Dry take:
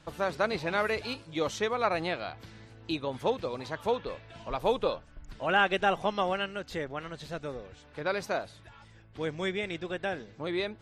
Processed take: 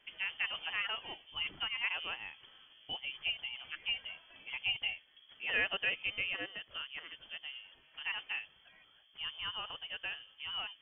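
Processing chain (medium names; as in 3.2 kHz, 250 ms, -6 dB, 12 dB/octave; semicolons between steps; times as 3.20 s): high-pass 120 Hz 6 dB/octave; frequency inversion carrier 3.3 kHz; trim -8 dB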